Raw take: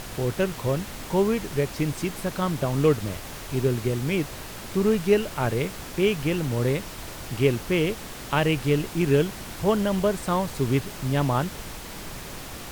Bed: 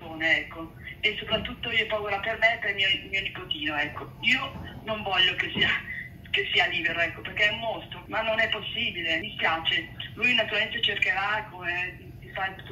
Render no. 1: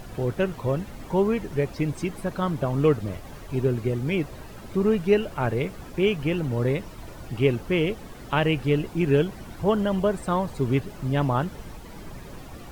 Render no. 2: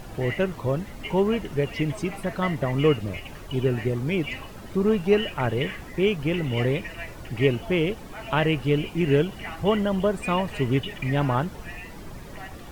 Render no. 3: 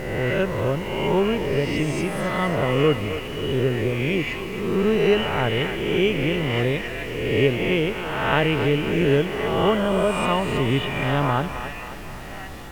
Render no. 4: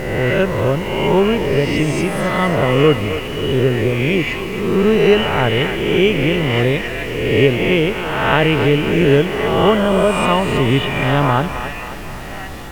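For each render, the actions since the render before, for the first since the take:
noise reduction 12 dB, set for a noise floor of -38 dBFS
add bed -12 dB
reverse spectral sustain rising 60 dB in 1.35 s; on a send: thinning echo 266 ms, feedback 59%, high-pass 390 Hz, level -9.5 dB
trim +6.5 dB; peak limiter -1 dBFS, peak gain reduction 2.5 dB

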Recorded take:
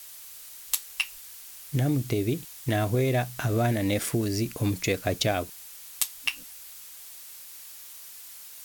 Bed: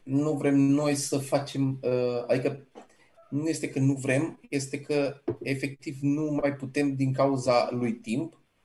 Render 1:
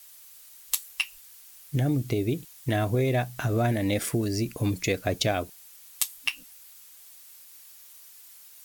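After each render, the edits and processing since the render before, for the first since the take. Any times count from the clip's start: noise reduction 7 dB, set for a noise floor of -45 dBFS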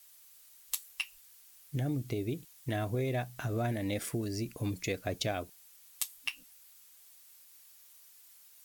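trim -8 dB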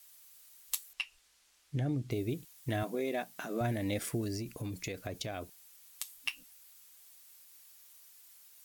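0.93–2.11 s: distance through air 69 m; 2.83–3.61 s: brick-wall FIR high-pass 160 Hz; 4.36–6.24 s: compression, threshold -34 dBFS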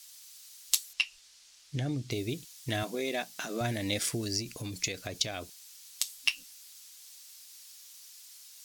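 peaking EQ 5.1 kHz +13.5 dB 2.1 oct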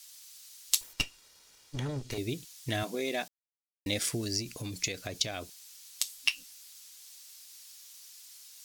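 0.81–2.18 s: comb filter that takes the minimum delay 2.1 ms; 3.28–3.86 s: mute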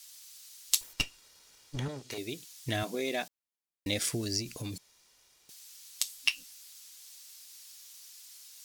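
1.88–2.46 s: high-pass 400 Hz 6 dB/octave; 4.78–5.49 s: room tone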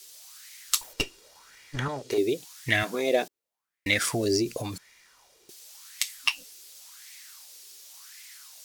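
in parallel at -8 dB: overload inside the chain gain 25.5 dB; on the sum: sweeping bell 0.91 Hz 370–2100 Hz +17 dB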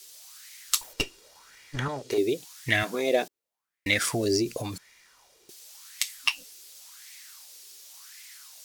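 no audible change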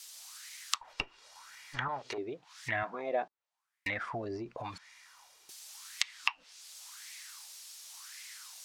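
low-pass that closes with the level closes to 1 kHz, closed at -25.5 dBFS; resonant low shelf 620 Hz -11.5 dB, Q 1.5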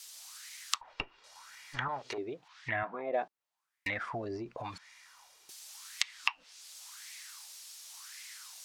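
0.81–1.24 s: Bessel low-pass 3.1 kHz; 2.47–3.12 s: low-pass 3.8 kHz -> 2.1 kHz

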